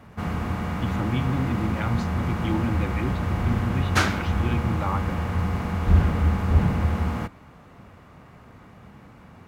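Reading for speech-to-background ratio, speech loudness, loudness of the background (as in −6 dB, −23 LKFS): −4.5 dB, −30.0 LKFS, −25.5 LKFS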